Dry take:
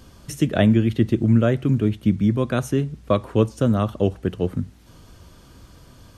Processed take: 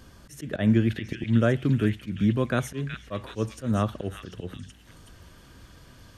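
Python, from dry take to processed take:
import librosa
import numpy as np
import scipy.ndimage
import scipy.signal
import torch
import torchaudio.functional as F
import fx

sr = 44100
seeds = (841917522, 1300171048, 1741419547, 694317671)

p1 = fx.peak_eq(x, sr, hz=1700.0, db=6.0, octaves=0.51)
p2 = fx.auto_swell(p1, sr, attack_ms=132.0)
p3 = p2 + fx.echo_stepped(p2, sr, ms=372, hz=2500.0, octaves=0.7, feedback_pct=70, wet_db=-1.0, dry=0)
y = F.gain(torch.from_numpy(p3), -3.5).numpy()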